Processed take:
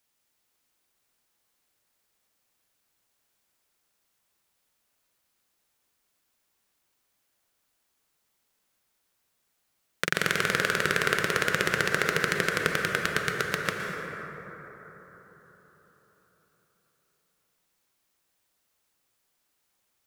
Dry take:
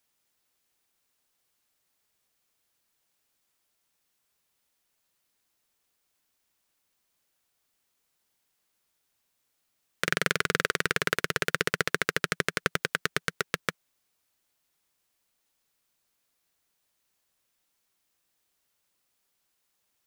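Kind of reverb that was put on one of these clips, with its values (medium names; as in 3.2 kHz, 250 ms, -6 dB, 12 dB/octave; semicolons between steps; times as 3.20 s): plate-style reverb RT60 4.6 s, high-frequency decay 0.3×, pre-delay 105 ms, DRR 1 dB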